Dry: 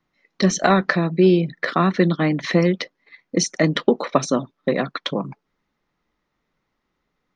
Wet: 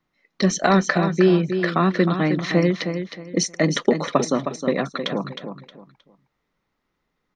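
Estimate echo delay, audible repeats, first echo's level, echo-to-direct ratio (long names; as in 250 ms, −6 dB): 313 ms, 3, −8.0 dB, −7.5 dB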